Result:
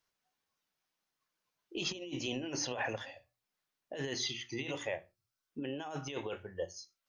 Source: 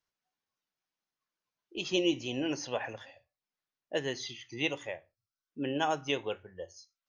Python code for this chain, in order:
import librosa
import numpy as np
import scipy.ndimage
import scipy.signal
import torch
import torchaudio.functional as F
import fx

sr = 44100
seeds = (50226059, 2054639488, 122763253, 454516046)

y = fx.over_compress(x, sr, threshold_db=-38.0, ratio=-1.0)
y = fx.hum_notches(y, sr, base_hz=60, count=6)